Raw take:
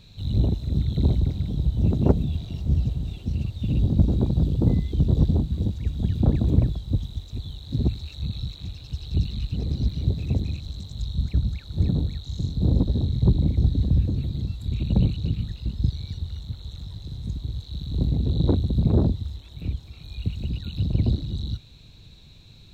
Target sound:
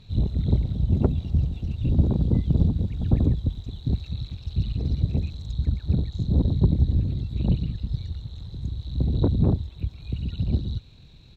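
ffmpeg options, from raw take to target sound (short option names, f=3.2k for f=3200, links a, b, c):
-af "atempo=2,aemphasis=mode=reproduction:type=cd"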